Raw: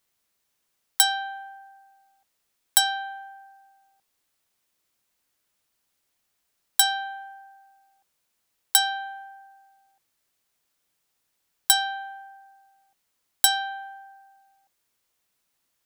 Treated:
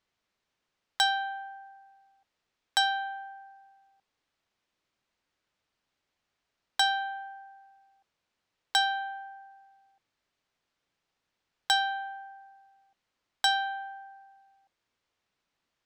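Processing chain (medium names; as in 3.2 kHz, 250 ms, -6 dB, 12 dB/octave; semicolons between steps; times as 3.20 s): distance through air 140 m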